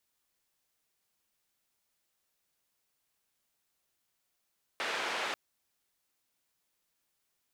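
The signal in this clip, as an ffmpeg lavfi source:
-f lavfi -i "anoisesrc=c=white:d=0.54:r=44100:seed=1,highpass=f=420,lowpass=f=2500,volume=-20.4dB"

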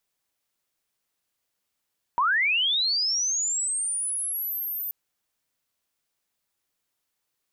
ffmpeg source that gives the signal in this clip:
-f lavfi -i "aevalsrc='pow(10,(-19-9.5*t/2.73)/20)*sin(2*PI*(920*t+13080*t*t/(2*2.73)))':d=2.73:s=44100"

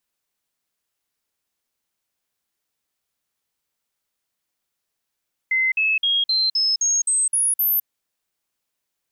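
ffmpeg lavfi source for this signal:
-f lavfi -i "aevalsrc='0.15*clip(min(mod(t,0.26),0.21-mod(t,0.26))/0.005,0,1)*sin(2*PI*2060*pow(2,floor(t/0.26)/3)*mod(t,0.26))':d=2.34:s=44100"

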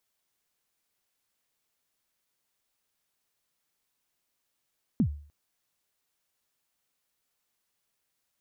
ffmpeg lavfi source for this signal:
-f lavfi -i "aevalsrc='0.133*pow(10,-3*t/0.46)*sin(2*PI*(270*0.082/log(73/270)*(exp(log(73/270)*min(t,0.082)/0.082)-1)+73*max(t-0.082,0)))':d=0.3:s=44100"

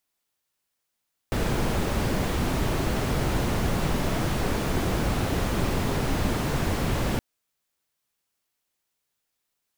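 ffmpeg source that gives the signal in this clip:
-f lavfi -i "anoisesrc=c=brown:a=0.279:d=5.87:r=44100:seed=1"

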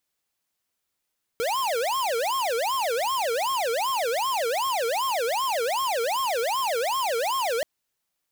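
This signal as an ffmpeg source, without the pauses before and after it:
-f lavfi -i "aevalsrc='0.0531*(2*lt(mod((766*t-314/(2*PI*2.6)*sin(2*PI*2.6*t)),1),0.5)-1)':d=6.23:s=44100"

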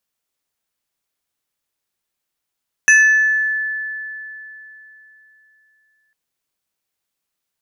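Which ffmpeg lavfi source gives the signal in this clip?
-f lavfi -i "aevalsrc='0.501*pow(10,-3*t/3.42)*sin(2*PI*1740*t+0.79*pow(10,-3*t/0.93)*sin(2*PI*2.49*1740*t))':d=3.25:s=44100"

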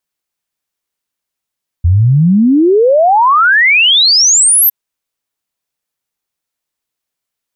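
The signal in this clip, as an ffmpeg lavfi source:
-f lavfi -i "aevalsrc='0.562*clip(min(t,2.86-t)/0.01,0,1)*sin(2*PI*81*2.86/log(13000/81)*(exp(log(13000/81)*t/2.86)-1))':d=2.86:s=44100"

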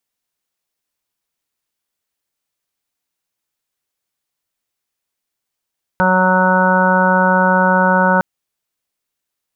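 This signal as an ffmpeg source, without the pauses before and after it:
-f lavfi -i "aevalsrc='0.158*sin(2*PI*185*t)+0.0398*sin(2*PI*370*t)+0.141*sin(2*PI*555*t)+0.0596*sin(2*PI*740*t)+0.178*sin(2*PI*925*t)+0.0447*sin(2*PI*1110*t)+0.0794*sin(2*PI*1295*t)+0.15*sin(2*PI*1480*t)':d=2.21:s=44100"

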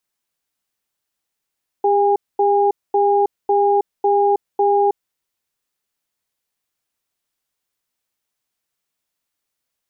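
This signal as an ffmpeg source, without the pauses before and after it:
-f lavfi -i "aevalsrc='0.178*(sin(2*PI*402*t)+sin(2*PI*814*t))*clip(min(mod(t,0.55),0.32-mod(t,0.55))/0.005,0,1)':d=3.16:s=44100"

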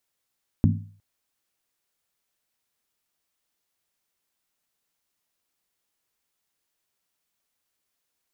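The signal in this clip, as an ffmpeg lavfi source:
-f lavfi -i "aevalsrc='0.178*pow(10,-3*t/0.49)*sin(2*PI*101*t)+0.141*pow(10,-3*t/0.388)*sin(2*PI*161*t)+0.112*pow(10,-3*t/0.335)*sin(2*PI*215.7*t)+0.0891*pow(10,-3*t/0.323)*sin(2*PI*231.9*t)+0.0708*pow(10,-3*t/0.301)*sin(2*PI*268*t)':d=0.36:s=44100"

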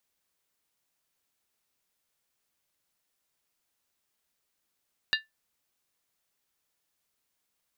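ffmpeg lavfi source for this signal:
-f lavfi -i "aevalsrc='0.0891*pow(10,-3*t/0.17)*sin(2*PI*1760*t)+0.0708*pow(10,-3*t/0.135)*sin(2*PI*2805.4*t)+0.0562*pow(10,-3*t/0.116)*sin(2*PI*3759.4*t)+0.0447*pow(10,-3*t/0.112)*sin(2*PI*4041*t)+0.0355*pow(10,-3*t/0.104)*sin(2*PI*4669.3*t)':d=0.63:s=44100"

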